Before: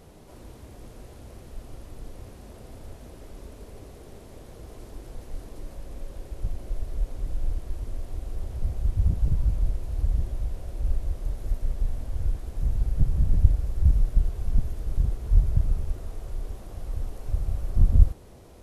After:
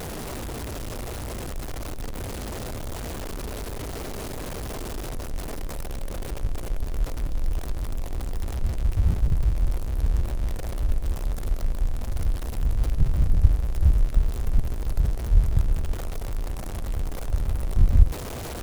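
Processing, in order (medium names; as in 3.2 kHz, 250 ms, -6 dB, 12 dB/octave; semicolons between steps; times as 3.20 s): jump at every zero crossing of -28.5 dBFS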